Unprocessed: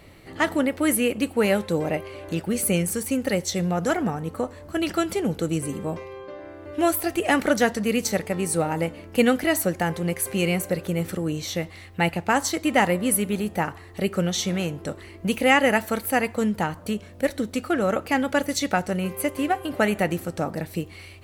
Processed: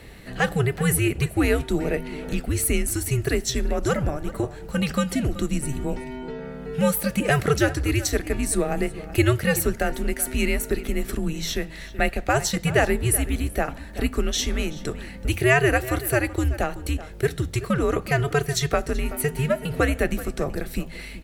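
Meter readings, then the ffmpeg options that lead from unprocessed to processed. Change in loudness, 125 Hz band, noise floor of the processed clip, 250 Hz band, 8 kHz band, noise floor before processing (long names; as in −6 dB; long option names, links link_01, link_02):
0.0 dB, +5.5 dB, −38 dBFS, −2.0 dB, +1.0 dB, −44 dBFS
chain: -filter_complex "[0:a]bandreject=frequency=1200:width=6.6,bandreject=frequency=75.85:width_type=h:width=4,bandreject=frequency=151.7:width_type=h:width=4,bandreject=frequency=227.55:width_type=h:width=4,bandreject=frequency=303.4:width_type=h:width=4,asplit=2[link_01][link_02];[link_02]acompressor=threshold=-34dB:ratio=6,volume=1dB[link_03];[link_01][link_03]amix=inputs=2:normalize=0,afreqshift=-140,asplit=2[link_04][link_05];[link_05]adelay=379,volume=-15dB,highshelf=frequency=4000:gain=-8.53[link_06];[link_04][link_06]amix=inputs=2:normalize=0,volume=-1dB"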